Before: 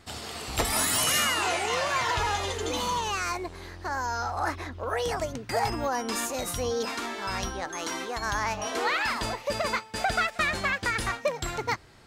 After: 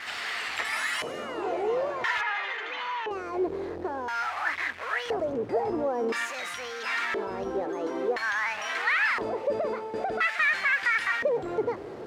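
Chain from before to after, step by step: zero-crossing step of -29 dBFS; in parallel at +2 dB: limiter -23 dBFS, peak gain reduction 10.5 dB; on the sum: bit-crush 6-bit; 2.21–3.11 BPF 330–2800 Hz; LFO band-pass square 0.49 Hz 430–1900 Hz

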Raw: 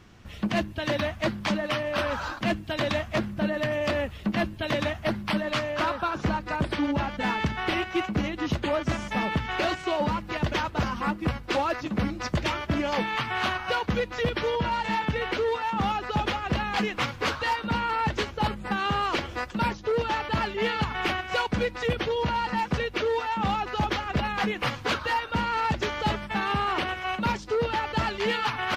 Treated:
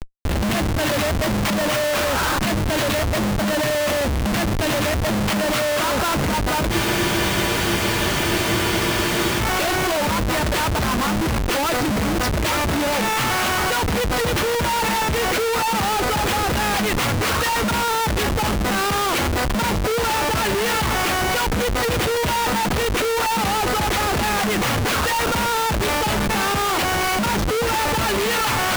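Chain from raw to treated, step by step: Schmitt trigger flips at -41 dBFS; spectral freeze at 6.74, 2.66 s; gain +7.5 dB

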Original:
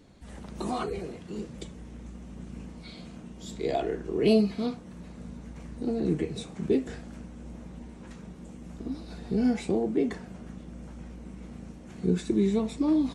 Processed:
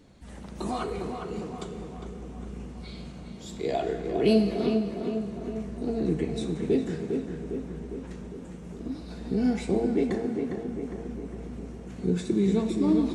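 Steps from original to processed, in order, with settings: darkening echo 0.405 s, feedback 61%, low-pass 2200 Hz, level -5 dB; on a send at -9 dB: reverb RT60 2.2 s, pre-delay 26 ms

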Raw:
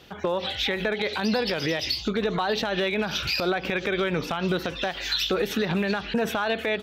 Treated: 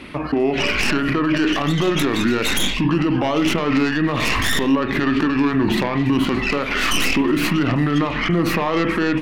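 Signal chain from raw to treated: tracing distortion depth 0.13 ms; speed mistake 45 rpm record played at 33 rpm; ten-band EQ 125 Hz -5 dB, 250 Hz +8 dB, 500 Hz -3 dB, 8000 Hz -5 dB; in parallel at +1.5 dB: negative-ratio compressor -30 dBFS; on the sum: limiter -14 dBFS, peak gain reduction 7 dB; on a send at -9.5 dB: reverb, pre-delay 41 ms; on the sum: gain +3 dB

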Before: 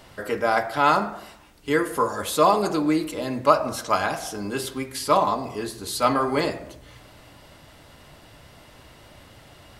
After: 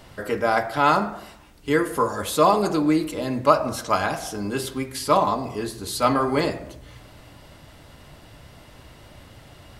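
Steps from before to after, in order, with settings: low shelf 240 Hz +5 dB

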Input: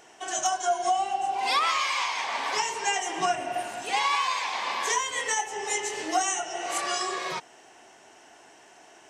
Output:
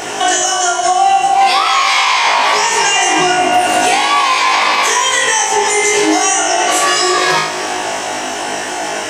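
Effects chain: compressor 12:1, threshold -39 dBFS, peak gain reduction 19.5 dB; flutter echo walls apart 3.3 m, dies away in 0.46 s; maximiser +31.5 dB; lo-fi delay 0.152 s, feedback 80%, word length 7-bit, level -14 dB; gain -2.5 dB

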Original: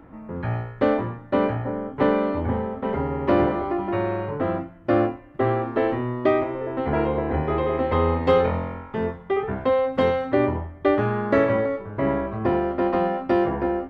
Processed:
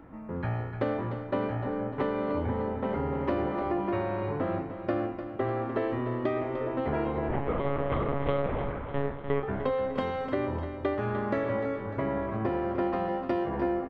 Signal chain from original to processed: compressor, threshold -23 dBFS, peak gain reduction 9.5 dB; 7.28–9.43 monotone LPC vocoder at 8 kHz 140 Hz; feedback echo 0.3 s, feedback 53%, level -10 dB; gain -3 dB

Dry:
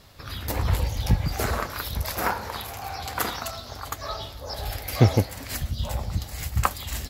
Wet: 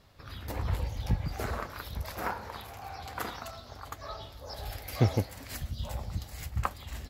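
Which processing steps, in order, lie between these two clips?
high shelf 3900 Hz -7.5 dB, from 4.32 s -2 dB, from 6.46 s -10.5 dB; gain -7.5 dB

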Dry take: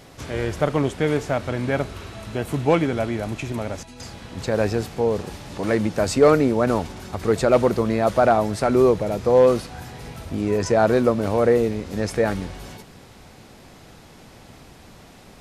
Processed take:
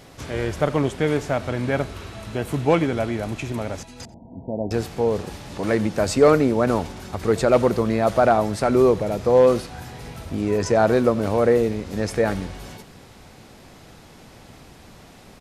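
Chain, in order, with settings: 4.05–4.71 rippled Chebyshev low-pass 960 Hz, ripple 9 dB; on a send: echo 90 ms -21.5 dB

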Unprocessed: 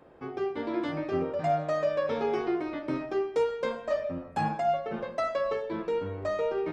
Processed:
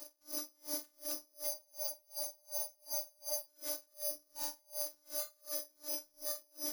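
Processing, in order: CVSD 32 kbps; tilt +1.5 dB/oct; whisperiser; bell 610 Hz +9.5 dB 0.38 oct; on a send: flutter echo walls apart 7.8 m, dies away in 0.36 s; on the sum: careless resampling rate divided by 8×, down none, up zero stuff; limiter -18.5 dBFS, peak gain reduction 27.5 dB; robotiser 298 Hz; spectral freeze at 1.54, 1.94 s; dB-linear tremolo 2.7 Hz, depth 37 dB

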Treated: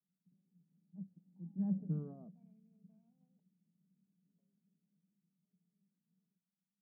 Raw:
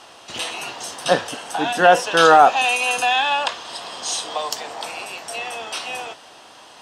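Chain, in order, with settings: Wiener smoothing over 41 samples; Doppler pass-by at 1.82, 42 m/s, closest 2.2 m; Butterworth band-pass 180 Hz, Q 5.1; gain +14.5 dB

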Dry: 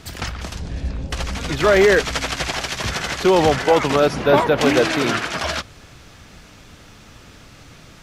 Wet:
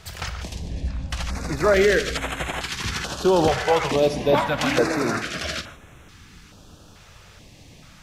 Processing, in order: 2.12–2.72 notch 5800 Hz, Q 5.5; non-linear reverb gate 0.18 s flat, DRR 10.5 dB; stepped notch 2.3 Hz 270–4700 Hz; gain -3 dB

